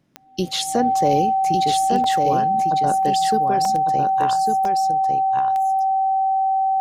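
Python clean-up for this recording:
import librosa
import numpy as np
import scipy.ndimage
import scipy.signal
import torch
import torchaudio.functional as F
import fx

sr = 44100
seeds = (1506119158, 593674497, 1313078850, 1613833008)

y = fx.fix_declick_ar(x, sr, threshold=10.0)
y = fx.notch(y, sr, hz=770.0, q=30.0)
y = fx.fix_interpolate(y, sr, at_s=(2.04, 3.65, 4.65), length_ms=2.5)
y = fx.fix_echo_inverse(y, sr, delay_ms=1152, level_db=-4.5)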